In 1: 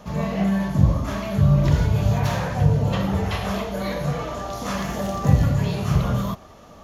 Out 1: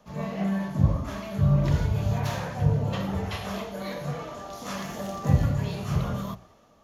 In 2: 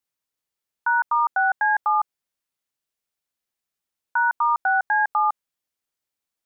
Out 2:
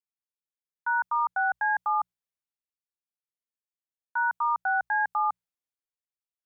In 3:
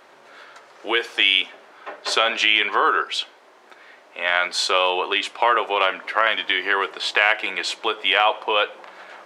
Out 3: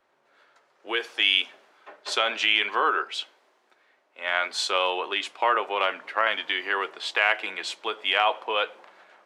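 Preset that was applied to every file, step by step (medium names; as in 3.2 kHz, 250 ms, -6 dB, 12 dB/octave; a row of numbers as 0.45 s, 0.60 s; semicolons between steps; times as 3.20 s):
hum notches 60/120/180 Hz; three bands expanded up and down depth 40%; trim -5.5 dB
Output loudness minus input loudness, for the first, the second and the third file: -5.5 LU, -5.5 LU, -5.0 LU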